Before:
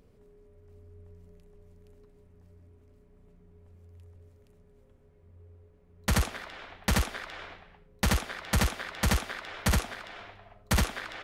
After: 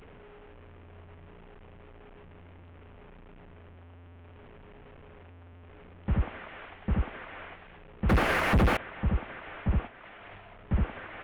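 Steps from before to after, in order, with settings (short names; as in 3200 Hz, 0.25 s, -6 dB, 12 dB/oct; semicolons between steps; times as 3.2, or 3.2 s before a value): delta modulation 16 kbps, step -44.5 dBFS; 8.09–8.77 sample leveller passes 5; 9.87–10.38 negative-ratio compressor -49 dBFS, ratio -1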